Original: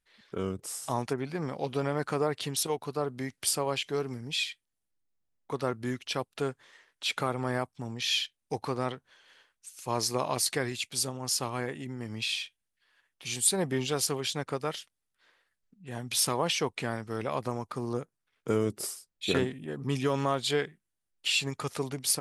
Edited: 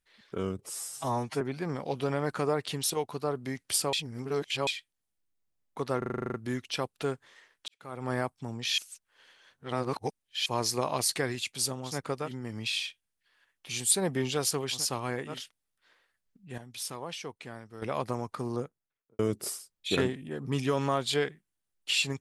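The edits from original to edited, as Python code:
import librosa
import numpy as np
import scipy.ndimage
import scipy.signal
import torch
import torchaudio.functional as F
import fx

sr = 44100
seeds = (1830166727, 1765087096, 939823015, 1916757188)

y = fx.studio_fade_out(x, sr, start_s=17.84, length_s=0.72)
y = fx.edit(y, sr, fx.stretch_span(start_s=0.6, length_s=0.54, factor=1.5),
    fx.reverse_span(start_s=3.66, length_s=0.74),
    fx.stutter(start_s=5.71, slice_s=0.04, count=10),
    fx.fade_in_span(start_s=7.05, length_s=0.43, curve='qua'),
    fx.reverse_span(start_s=8.15, length_s=1.68),
    fx.swap(start_s=11.28, length_s=0.55, other_s=14.34, other_length_s=0.36, crossfade_s=0.16),
    fx.clip_gain(start_s=15.95, length_s=1.24, db=-10.5), tone=tone)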